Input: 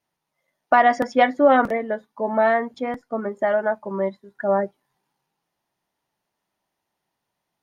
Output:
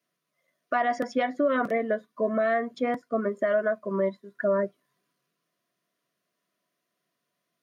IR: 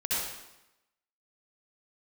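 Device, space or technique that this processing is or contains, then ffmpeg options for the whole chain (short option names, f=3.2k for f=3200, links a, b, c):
PA system with an anti-feedback notch: -af "highpass=f=140:w=0.5412,highpass=f=140:w=1.3066,asuperstop=centerf=850:order=20:qfactor=3.7,alimiter=limit=-16dB:level=0:latency=1:release=256"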